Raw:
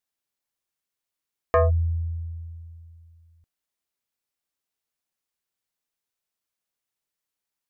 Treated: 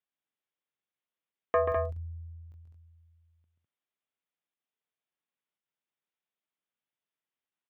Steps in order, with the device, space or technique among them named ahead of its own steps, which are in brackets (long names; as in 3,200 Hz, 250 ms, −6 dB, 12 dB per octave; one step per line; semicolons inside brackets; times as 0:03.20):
call with lost packets (high-pass filter 120 Hz 24 dB per octave; downsampling to 8,000 Hz; dropped packets bursts)
loudspeakers that aren't time-aligned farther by 46 metres −6 dB, 70 metres −5 dB
level −5.5 dB